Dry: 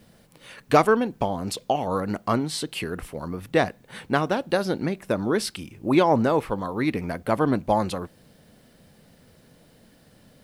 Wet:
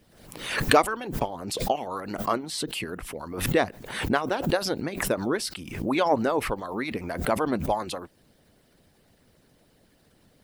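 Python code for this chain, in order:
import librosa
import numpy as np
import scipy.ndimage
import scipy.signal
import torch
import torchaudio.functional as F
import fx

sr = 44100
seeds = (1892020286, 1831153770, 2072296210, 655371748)

y = fx.hpss(x, sr, part='harmonic', gain_db=-17)
y = fx.pre_swell(y, sr, db_per_s=68.0)
y = y * 10.0 ** (-1.0 / 20.0)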